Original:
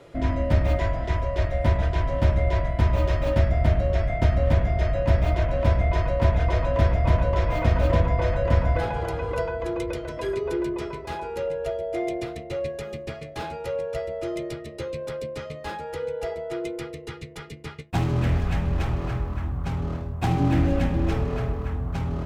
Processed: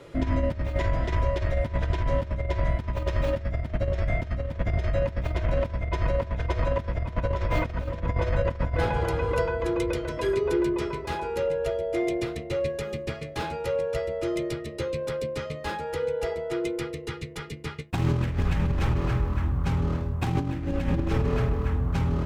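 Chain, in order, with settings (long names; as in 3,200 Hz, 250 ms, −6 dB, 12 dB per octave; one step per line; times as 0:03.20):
parametric band 700 Hz −8 dB 0.25 octaves
compressor whose output falls as the input rises −24 dBFS, ratio −0.5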